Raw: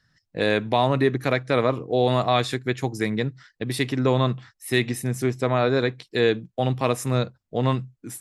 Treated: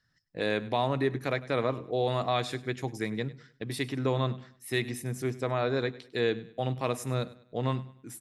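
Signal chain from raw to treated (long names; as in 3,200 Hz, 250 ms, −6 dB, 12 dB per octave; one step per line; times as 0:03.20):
mains-hum notches 50/100/150/200/250 Hz
on a send: repeating echo 100 ms, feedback 36%, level −18.5 dB
on the sum: level −7.5 dB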